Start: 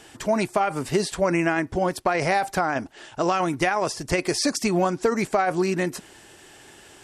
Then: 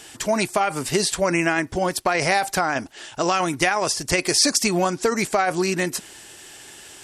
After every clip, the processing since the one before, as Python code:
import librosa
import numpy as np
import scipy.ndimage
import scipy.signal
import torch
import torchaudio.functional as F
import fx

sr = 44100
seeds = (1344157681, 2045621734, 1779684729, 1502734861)

y = fx.high_shelf(x, sr, hz=2300.0, db=10.0)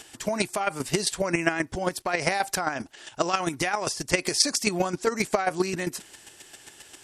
y = fx.chopper(x, sr, hz=7.5, depth_pct=60, duty_pct=15)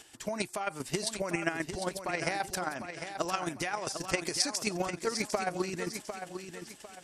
y = fx.echo_feedback(x, sr, ms=751, feedback_pct=34, wet_db=-8.5)
y = y * librosa.db_to_amplitude(-7.5)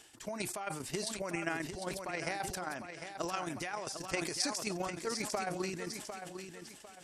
y = fx.sustainer(x, sr, db_per_s=53.0)
y = y * librosa.db_to_amplitude(-6.0)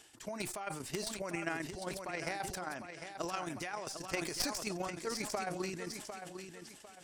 y = fx.tracing_dist(x, sr, depth_ms=0.036)
y = y * librosa.db_to_amplitude(-1.5)